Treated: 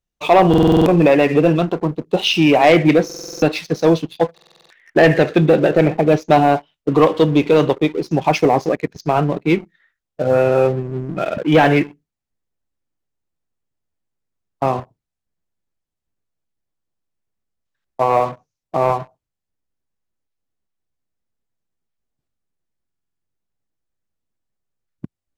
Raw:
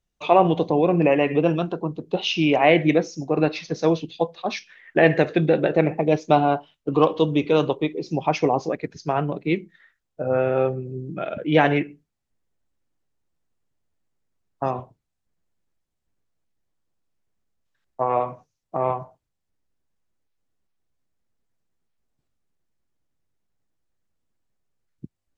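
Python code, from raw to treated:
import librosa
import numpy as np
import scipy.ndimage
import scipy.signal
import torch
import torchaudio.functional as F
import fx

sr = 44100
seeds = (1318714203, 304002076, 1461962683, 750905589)

y = fx.leveller(x, sr, passes=2)
y = fx.buffer_glitch(y, sr, at_s=(0.49, 3.05, 4.33, 22.86), block=2048, repeats=7)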